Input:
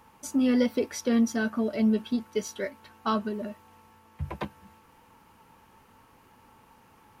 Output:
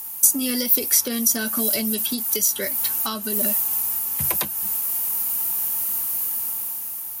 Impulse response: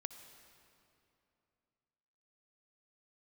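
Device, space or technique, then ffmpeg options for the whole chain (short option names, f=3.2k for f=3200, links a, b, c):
FM broadcast chain: -filter_complex "[0:a]highpass=57,dynaudnorm=f=240:g=9:m=9dB,acrossover=split=200|2700[a][b][c];[a]acompressor=threshold=-36dB:ratio=4[d];[b]acompressor=threshold=-27dB:ratio=4[e];[c]acompressor=threshold=-45dB:ratio=4[f];[d][e][f]amix=inputs=3:normalize=0,aemphasis=mode=production:type=75fm,alimiter=limit=-19dB:level=0:latency=1:release=483,asoftclip=type=hard:threshold=-21dB,lowpass=f=15k:w=0.5412,lowpass=f=15k:w=1.3066,aemphasis=mode=production:type=75fm,highshelf=f=5k:g=6,volume=2dB"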